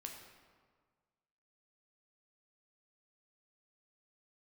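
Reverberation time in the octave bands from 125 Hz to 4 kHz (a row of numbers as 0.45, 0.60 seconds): 1.8, 1.7, 1.6, 1.7, 1.3, 1.0 seconds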